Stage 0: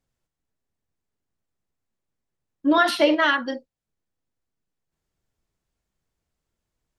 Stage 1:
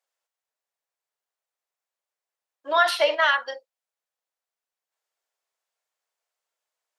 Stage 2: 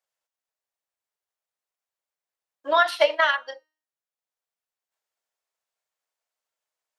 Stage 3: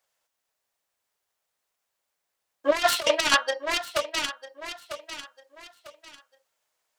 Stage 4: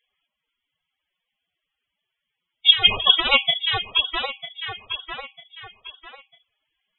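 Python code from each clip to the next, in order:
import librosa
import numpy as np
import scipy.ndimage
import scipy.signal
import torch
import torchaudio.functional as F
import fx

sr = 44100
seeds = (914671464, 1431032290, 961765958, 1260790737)

y1 = scipy.signal.sosfilt(scipy.signal.cheby2(4, 50, 210.0, 'highpass', fs=sr, output='sos'), x)
y2 = fx.transient(y1, sr, attack_db=7, sustain_db=-4)
y2 = fx.comb_fb(y2, sr, f0_hz=310.0, decay_s=0.48, harmonics='all', damping=0.0, mix_pct=40)
y2 = y2 * 10.0 ** (1.5 / 20.0)
y3 = fx.self_delay(y2, sr, depth_ms=0.4)
y3 = fx.echo_feedback(y3, sr, ms=948, feedback_pct=31, wet_db=-16.0)
y3 = fx.over_compress(y3, sr, threshold_db=-26.0, ratio=-0.5)
y3 = y3 * 10.0 ** (5.5 / 20.0)
y4 = fx.dynamic_eq(y3, sr, hz=2100.0, q=0.98, threshold_db=-37.0, ratio=4.0, max_db=-6)
y4 = fx.freq_invert(y4, sr, carrier_hz=3900)
y4 = fx.spec_topn(y4, sr, count=32)
y4 = y4 * 10.0 ** (8.0 / 20.0)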